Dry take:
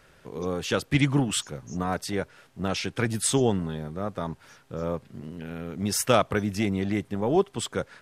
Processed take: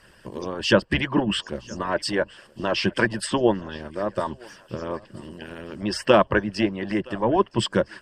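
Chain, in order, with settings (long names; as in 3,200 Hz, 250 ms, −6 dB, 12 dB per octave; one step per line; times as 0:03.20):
treble cut that deepens with the level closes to 2,400 Hz, closed at −22 dBFS
EQ curve with evenly spaced ripples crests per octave 1.3, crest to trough 11 dB
harmonic and percussive parts rebalanced harmonic −18 dB
on a send: feedback echo with a high-pass in the loop 968 ms, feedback 54%, high-pass 420 Hz, level −23 dB
on the sum: level +8 dB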